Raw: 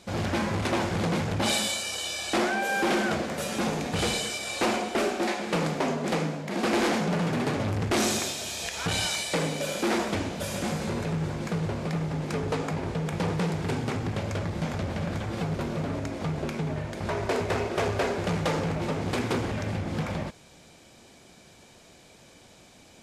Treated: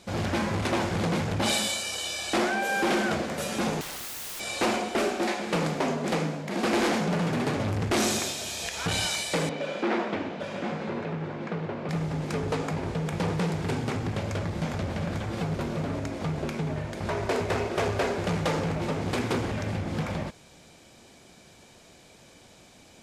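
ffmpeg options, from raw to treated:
-filter_complex "[0:a]asettb=1/sr,asplit=3[a][b][c];[a]atrim=end=3.814[d];[b]atrim=start=3.81:end=4.4,asetpts=PTS-STARTPTS,afade=t=in:d=0.004:c=qsin,afade=t=out:st=0.586:d=0.004:c=qsin,aeval=exprs='(mod(42.2*val(0)+1,2)-1)/42.2':c=same[e];[c]atrim=start=4.396[f];[d][e]acrossfade=d=0.004:c1=hsin:c2=qsin[g];[g][f]acrossfade=d=0.004:c1=qsin:c2=hsin,asettb=1/sr,asplit=3[h][i][j];[h]atrim=end=9.494[k];[i]atrim=start=9.49:end=11.89,asetpts=PTS-STARTPTS,afade=t=in:d=0.004:c=qsin,afade=t=out:st=2.396:d=0.004:c=qsin,highpass=190,lowpass=2.7k[l];[j]atrim=start=11.886[m];[k][l]acrossfade=d=0.004:c1=hsin:c2=qsin[n];[n][m]acrossfade=d=0.004:c1=qsin:c2=hsin"

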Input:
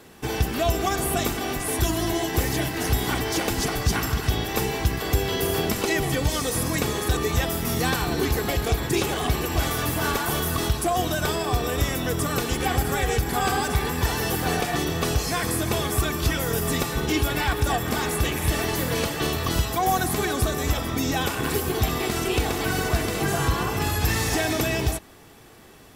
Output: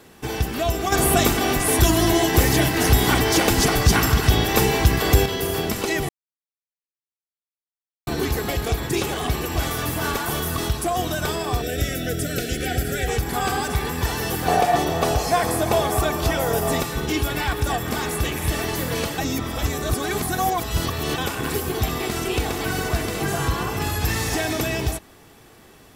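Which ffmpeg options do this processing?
-filter_complex "[0:a]asettb=1/sr,asplit=3[a][b][c];[a]atrim=end=0.924[d];[b]atrim=start=0.92:end=5.26,asetpts=PTS-STARTPTS,afade=t=in:d=0.004:c=qsin,afade=t=out:st=4.336:d=0.004:c=qsin,acontrast=82[e];[c]atrim=start=5.256[f];[d][e]acrossfade=d=0.004:c1=hsin:c2=qsin[g];[g][f]acrossfade=d=0.004:c1=qsin:c2=hsin,asettb=1/sr,asplit=3[h][i][j];[h]atrim=end=11.624[k];[i]atrim=start=11.62:end=13.08,asetpts=PTS-STARTPTS,afade=t=in:d=0.004:c=qsin,afade=t=out:st=1.456:d=0.004:c=qsin,asuperstop=centerf=990:order=20:qfactor=1.9[l];[j]atrim=start=13.076[m];[k][l]acrossfade=d=0.004:c1=hsin:c2=qsin[n];[n][m]acrossfade=d=0.004:c1=qsin:c2=hsin,asettb=1/sr,asplit=3[o][p][q];[o]atrim=end=14.484[r];[p]atrim=start=14.48:end=16.81,asetpts=PTS-STARTPTS,afade=t=in:d=0.004:c=qsin,afade=t=out:st=2.326:d=0.004:c=qsin,equalizer=f=710:t=o:w=0.99:g=12[s];[q]atrim=start=16.806[t];[r][s]acrossfade=d=0.004:c1=hsin:c2=qsin[u];[u][t]acrossfade=d=0.004:c1=qsin:c2=hsin,asplit=5[v][w][x][y][z];[v]atrim=end=6.09,asetpts=PTS-STARTPTS,afade=t=out:st=6.086:d=0.004:c=hsin[aa];[w]atrim=start=6.09:end=8.07,asetpts=PTS-STARTPTS,volume=0[ab];[x]atrim=start=8.07:end=19.182,asetpts=PTS-STARTPTS,afade=t=in:d=0.004:c=hsin[ac];[y]atrim=start=19.178:end=21.182,asetpts=PTS-STARTPTS,areverse[ad];[z]atrim=start=21.178[ae];[aa][ab][ac]concat=n=3:v=0:a=1[af];[af][ad]acrossfade=d=0.004:c1=hsin:c2=hsin[ag];[ag][ae]acrossfade=d=0.004:c1=hsin:c2=hsin"

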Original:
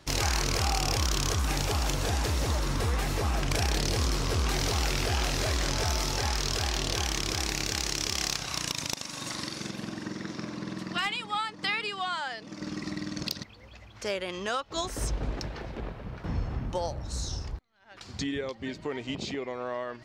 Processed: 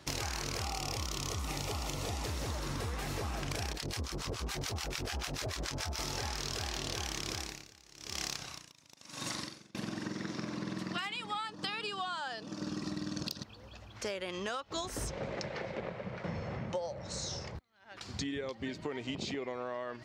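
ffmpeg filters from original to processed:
-filter_complex "[0:a]asettb=1/sr,asplit=3[a][b][c];[a]atrim=end=0.644[d];[b]atrim=start=0.64:end=2.27,asetpts=PTS-STARTPTS,afade=t=in:d=0.004:c=qsin,afade=t=out:st=1.626:d=0.004:c=qsin,asuperstop=centerf=1600:order=4:qfactor=5.9[e];[c]atrim=start=2.266[f];[d][e]acrossfade=d=0.004:c1=hsin:c2=qsin[g];[g][f]acrossfade=d=0.004:c1=qsin:c2=hsin,asettb=1/sr,asplit=3[h][i][j];[h]atrim=end=3.734[k];[i]atrim=start=3.73:end=5.99,asetpts=PTS-STARTPTS,afade=t=in:d=0.004:c=qsin,afade=t=out:st=2.256:d=0.004:c=qsin,acrossover=split=810[l][m];[l]aeval=exprs='val(0)*(1-1/2+1/2*cos(2*PI*6.9*n/s))':c=same[n];[m]aeval=exprs='val(0)*(1-1/2-1/2*cos(2*PI*6.9*n/s))':c=same[o];[n][o]amix=inputs=2:normalize=0[p];[j]atrim=start=5.986[q];[k][p]acrossfade=d=0.004:c1=hsin:c2=qsin[r];[r][q]acrossfade=d=0.004:c1=qsin:c2=hsin,asettb=1/sr,asplit=3[s][t][u];[s]atrim=end=7.314[v];[t]atrim=start=7.31:end=9.75,asetpts=PTS-STARTPTS,afade=t=in:d=0.004:c=qsin,afade=t=out:st=2.436:d=0.004:c=qsin,aeval=exprs='val(0)*pow(10,-29*(0.5-0.5*cos(2*PI*1*n/s))/20)':c=same[w];[u]atrim=start=9.746[x];[v][w]acrossfade=d=0.004:c1=hsin:c2=qsin[y];[y][x]acrossfade=d=0.004:c1=qsin:c2=hsin,asettb=1/sr,asplit=3[z][aa][ab];[z]atrim=end=11.474[ac];[aa]atrim=start=11.47:end=13.91,asetpts=PTS-STARTPTS,afade=t=in:d=0.004:c=qsin,afade=t=out:st=2.436:d=0.004:c=qsin,equalizer=f=2.1k:w=6.5:g=-14.5[ad];[ab]atrim=start=13.906[ae];[ac][ad]acrossfade=d=0.004:c1=hsin:c2=qsin[af];[af][ae]acrossfade=d=0.004:c1=qsin:c2=hsin,asettb=1/sr,asplit=3[ag][ah][ai];[ag]atrim=end=15.104[aj];[ah]atrim=start=15.1:end=17.55,asetpts=PTS-STARTPTS,afade=t=in:d=0.004:c=qsin,afade=t=out:st=2.446:d=0.004:c=qsin,highpass=130,equalizer=f=190:t=q:w=4:g=4,equalizer=f=270:t=q:w=4:g=-9,equalizer=f=550:t=q:w=4:g=9,equalizer=f=2.1k:t=q:w=4:g=7,lowpass=f=8.2k:w=0.5412,lowpass=f=8.2k:w=1.3066[ak];[ai]atrim=start=17.546[al];[aj][ak]acrossfade=d=0.004:c1=hsin:c2=qsin[am];[am][al]acrossfade=d=0.004:c1=qsin:c2=hsin,highpass=60,acompressor=threshold=-34dB:ratio=6"

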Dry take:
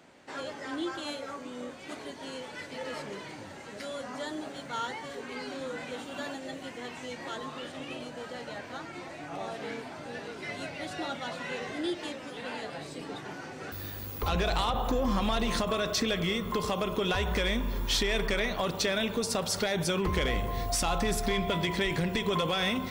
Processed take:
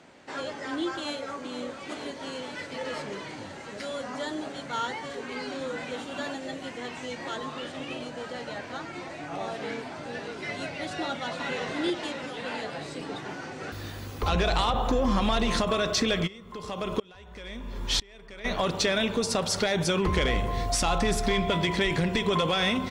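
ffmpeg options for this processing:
-filter_complex "[0:a]asplit=2[a][b];[b]afade=t=in:st=0.96:d=0.01,afade=t=out:st=1.6:d=0.01,aecho=0:1:470|940|1410|1880|2350|2820|3290|3760|4230|4700|5170|5640:0.354813|0.26611|0.199583|0.149687|0.112265|0.0841989|0.0631492|0.0473619|0.0355214|0.0266411|0.0199808|0.0149856[c];[a][c]amix=inputs=2:normalize=0,asplit=2[d][e];[e]afade=t=in:st=11.03:d=0.01,afade=t=out:st=11.54:d=0.01,aecho=0:1:360|720|1080|1440|1800|2160|2520|2880|3240|3600:0.530884|0.345075|0.224299|0.145794|0.0947662|0.061598|0.0400387|0.0260252|0.0169164|0.0109956[f];[d][f]amix=inputs=2:normalize=0,asplit=3[g][h][i];[g]afade=t=out:st=16.26:d=0.02[j];[h]aeval=exprs='val(0)*pow(10,-29*if(lt(mod(-1*n/s,1),2*abs(-1)/1000),1-mod(-1*n/s,1)/(2*abs(-1)/1000),(mod(-1*n/s,1)-2*abs(-1)/1000)/(1-2*abs(-1)/1000))/20)':c=same,afade=t=in:st=16.26:d=0.02,afade=t=out:st=18.44:d=0.02[k];[i]afade=t=in:st=18.44:d=0.02[l];[j][k][l]amix=inputs=3:normalize=0,lowpass=9.1k,volume=3.5dB"

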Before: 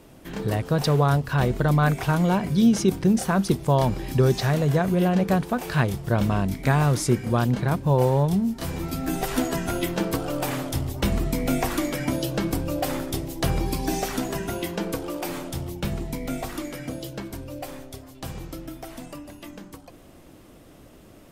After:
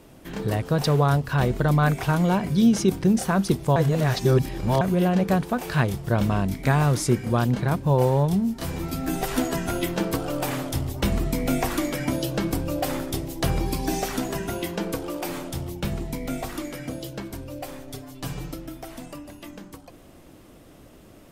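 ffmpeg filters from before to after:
-filter_complex "[0:a]asettb=1/sr,asplit=3[a][b][c];[a]atrim=end=17.874[d];[b]atrim=start=17.87:end=18.54,asetpts=PTS-STARTPTS,afade=t=in:d=0.004:c=qsin,afade=t=out:st=0.666:d=0.004:c=qsin,aecho=1:1:6.9:0.98,atrim=end_sample=29547[e];[c]atrim=start=18.536[f];[d][e]acrossfade=d=0.004:c1=hsin:c2=qsin[g];[g][f]acrossfade=d=0.004:c1=qsin:c2=hsin,asplit=3[h][i][j];[h]atrim=end=3.762[k];[i]atrim=start=3.758:end=4.812,asetpts=PTS-STARTPTS,areverse[l];[j]atrim=start=4.808[m];[k][l]acrossfade=d=0.004:c1=hsin:c2=hsin[n];[n][m]acrossfade=d=0.004:c1=hsin:c2=hsin"

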